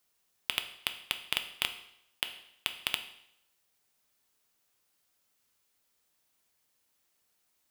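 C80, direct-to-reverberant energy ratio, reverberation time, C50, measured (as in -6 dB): 14.0 dB, 7.0 dB, 0.75 s, 11.5 dB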